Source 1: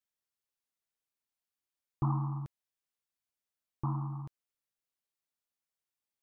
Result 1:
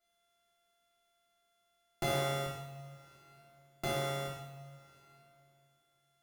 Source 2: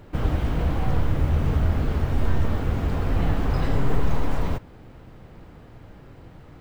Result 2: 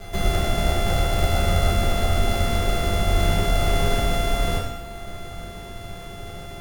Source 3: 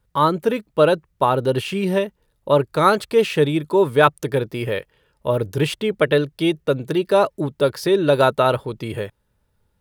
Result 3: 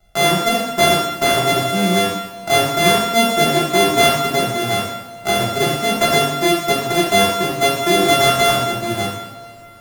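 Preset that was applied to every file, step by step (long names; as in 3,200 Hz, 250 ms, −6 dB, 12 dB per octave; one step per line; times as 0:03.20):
samples sorted by size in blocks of 64 samples
coupled-rooms reverb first 0.81 s, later 2.7 s, from −22 dB, DRR −6 dB
multiband upward and downward compressor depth 40%
level −5 dB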